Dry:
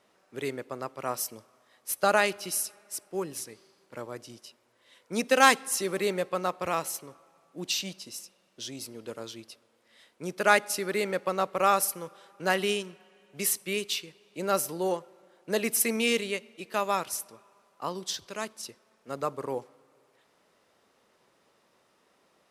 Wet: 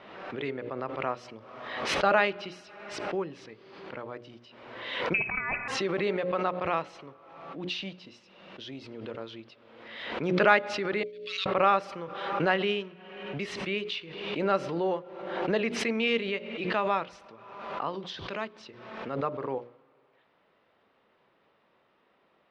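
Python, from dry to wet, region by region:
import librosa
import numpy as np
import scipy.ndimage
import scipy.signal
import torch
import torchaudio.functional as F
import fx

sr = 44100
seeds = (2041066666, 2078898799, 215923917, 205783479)

y = fx.chain(x, sr, fx.over_compress(threshold_db=-31.0, ratio=-1.0),
    fx.freq_invert(carrier_hz=2800), at=(5.14, 5.68))
y = fx.chain(y, sr, fx.cheby2_highpass(hz=780.0, order=4, stop_db=70),
    fx.peak_eq(hz=13000.0, db=-4.0, octaves=1.1),
    fx.level_steps(step_db=21), at=(11.03, 11.46))
y = scipy.signal.sosfilt(scipy.signal.butter(4, 3400.0, 'lowpass', fs=sr, output='sos'), y)
y = fx.hum_notches(y, sr, base_hz=60, count=10)
y = fx.pre_swell(y, sr, db_per_s=46.0)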